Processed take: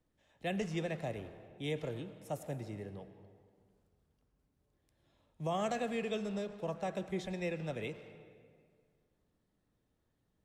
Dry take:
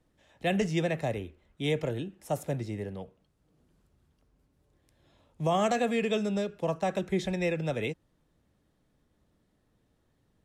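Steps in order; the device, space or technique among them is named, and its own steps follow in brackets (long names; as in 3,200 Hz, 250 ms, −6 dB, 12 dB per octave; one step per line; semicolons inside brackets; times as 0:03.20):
saturated reverb return (on a send at −9 dB: convolution reverb RT60 2.0 s, pre-delay 88 ms + soft clipping −29.5 dBFS, distortion −9 dB)
on the sum: level −8.5 dB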